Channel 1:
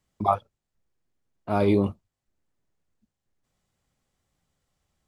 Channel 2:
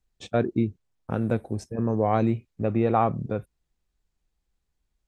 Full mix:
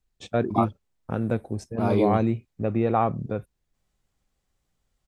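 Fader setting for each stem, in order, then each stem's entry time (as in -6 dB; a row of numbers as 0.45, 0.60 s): -2.5, -0.5 dB; 0.30, 0.00 s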